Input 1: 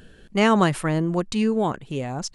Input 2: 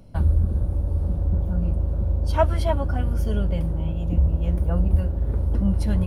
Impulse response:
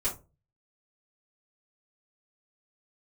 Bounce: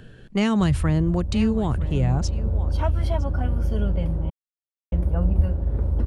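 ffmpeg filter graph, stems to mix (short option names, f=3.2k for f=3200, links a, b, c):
-filter_complex "[0:a]equalizer=f=120:w=3.9:g=12.5,volume=2dB,asplit=3[a][b][c];[b]volume=-20dB[d];[1:a]adelay=450,volume=0dB,asplit=3[e][f][g];[e]atrim=end=4.3,asetpts=PTS-STARTPTS,afade=t=out:st=4.296:d=0.004:c=hsin[h];[f]atrim=start=4.3:end=4.92,asetpts=PTS-STARTPTS,volume=0[i];[g]atrim=start=4.92,asetpts=PTS-STARTPTS,afade=t=in:d=0.004:c=hsin[j];[h][i][j]concat=n=3:v=0:a=1[k];[c]apad=whole_len=287416[l];[k][l]sidechaincompress=threshold=-20dB:ratio=8:attack=30:release=746[m];[d]aecho=0:1:961:1[n];[a][m][n]amix=inputs=3:normalize=0,highshelf=f=5.3k:g=-9.5,acrossover=split=240|3000[o][p][q];[p]acompressor=threshold=-27dB:ratio=4[r];[o][r][q]amix=inputs=3:normalize=0"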